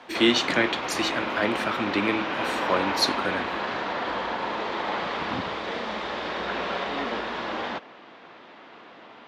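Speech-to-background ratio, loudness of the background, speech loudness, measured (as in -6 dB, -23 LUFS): 3.0 dB, -29.0 LUFS, -26.0 LUFS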